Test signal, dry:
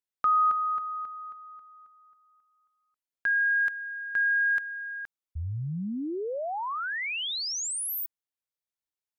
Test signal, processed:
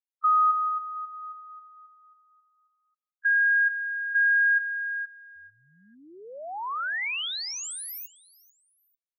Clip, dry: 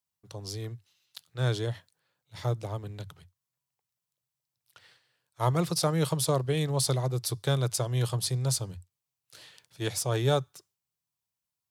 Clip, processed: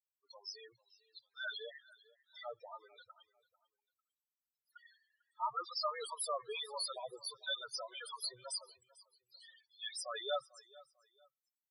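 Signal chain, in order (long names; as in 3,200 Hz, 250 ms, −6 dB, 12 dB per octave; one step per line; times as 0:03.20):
high-pass filter 1,100 Hz 12 dB per octave
spectral peaks only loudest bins 4
on a send: repeating echo 446 ms, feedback 29%, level −21.5 dB
on the sum: level +4 dB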